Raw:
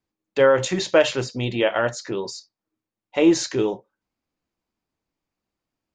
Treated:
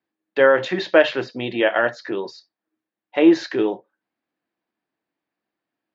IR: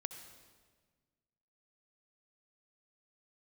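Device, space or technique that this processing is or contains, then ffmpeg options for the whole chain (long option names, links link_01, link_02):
kitchen radio: -af "highpass=200,equalizer=frequency=320:width_type=q:width=4:gain=4,equalizer=frequency=700:width_type=q:width=4:gain=4,equalizer=frequency=1700:width_type=q:width=4:gain=8,lowpass=frequency=4200:width=0.5412,lowpass=frequency=4200:width=1.3066"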